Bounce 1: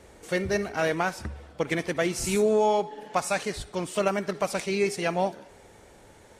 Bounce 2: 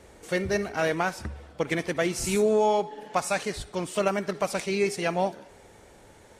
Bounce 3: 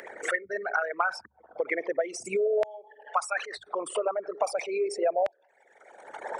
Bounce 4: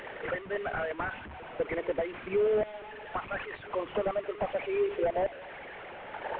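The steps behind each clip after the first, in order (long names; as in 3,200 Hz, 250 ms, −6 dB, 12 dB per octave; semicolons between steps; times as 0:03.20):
no processing that can be heard
spectral envelope exaggerated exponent 3; auto-filter high-pass saw down 0.38 Hz 600–1,800 Hz; multiband upward and downward compressor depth 100%
linear delta modulator 16 kbit/s, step −38 dBFS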